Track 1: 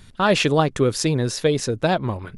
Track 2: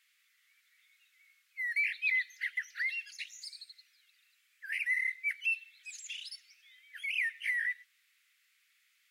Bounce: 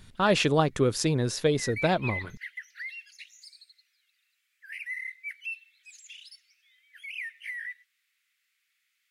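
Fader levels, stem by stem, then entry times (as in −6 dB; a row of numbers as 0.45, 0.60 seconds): −5.0, −4.5 decibels; 0.00, 0.00 seconds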